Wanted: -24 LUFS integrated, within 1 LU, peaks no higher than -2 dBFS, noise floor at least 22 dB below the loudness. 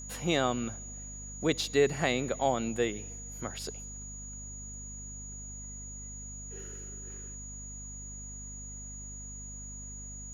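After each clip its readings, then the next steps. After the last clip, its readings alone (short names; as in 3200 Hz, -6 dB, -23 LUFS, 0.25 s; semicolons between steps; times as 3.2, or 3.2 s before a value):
hum 50 Hz; harmonics up to 250 Hz; hum level -43 dBFS; steady tone 6800 Hz; tone level -43 dBFS; loudness -35.0 LUFS; peak -11.5 dBFS; loudness target -24.0 LUFS
-> notches 50/100/150/200/250 Hz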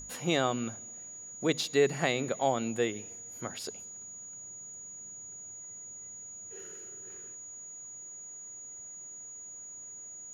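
hum none; steady tone 6800 Hz; tone level -43 dBFS
-> notch 6800 Hz, Q 30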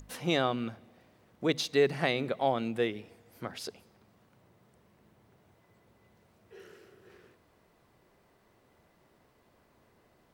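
steady tone none; loudness -31.5 LUFS; peak -11.5 dBFS; loudness target -24.0 LUFS
-> gain +7.5 dB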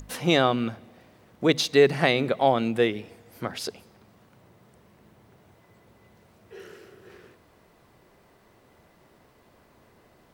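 loudness -24.0 LUFS; peak -4.0 dBFS; noise floor -59 dBFS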